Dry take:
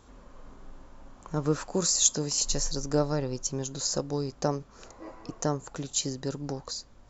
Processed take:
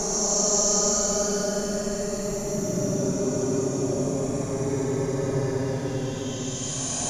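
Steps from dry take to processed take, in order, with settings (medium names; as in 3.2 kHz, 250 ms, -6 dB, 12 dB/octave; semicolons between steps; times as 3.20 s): ever faster or slower copies 533 ms, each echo +6 st, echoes 2; two-slope reverb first 0.71 s, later 2.2 s, DRR 9 dB; Paulstretch 32×, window 0.05 s, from 3.44 s; trim +4 dB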